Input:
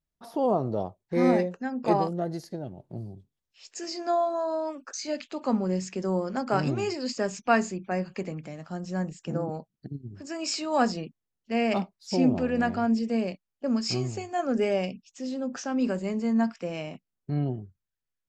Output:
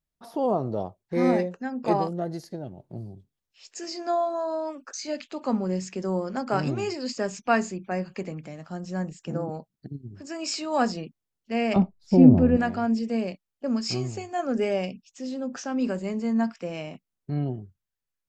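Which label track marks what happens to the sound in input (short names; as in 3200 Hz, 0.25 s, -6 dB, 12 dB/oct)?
11.760000	12.570000	tilt -4.5 dB/oct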